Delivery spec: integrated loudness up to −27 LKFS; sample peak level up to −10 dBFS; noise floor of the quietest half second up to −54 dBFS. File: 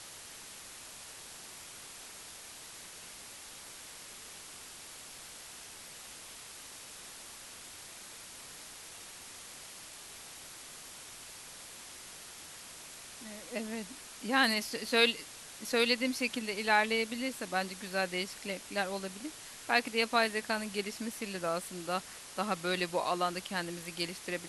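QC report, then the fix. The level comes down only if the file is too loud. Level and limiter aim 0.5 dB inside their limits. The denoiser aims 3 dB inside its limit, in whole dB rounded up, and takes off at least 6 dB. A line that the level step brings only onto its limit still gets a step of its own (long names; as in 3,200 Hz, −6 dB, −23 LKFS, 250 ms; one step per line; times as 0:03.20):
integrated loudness −33.0 LKFS: in spec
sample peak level −11.5 dBFS: in spec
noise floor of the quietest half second −49 dBFS: out of spec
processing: broadband denoise 8 dB, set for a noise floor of −49 dBFS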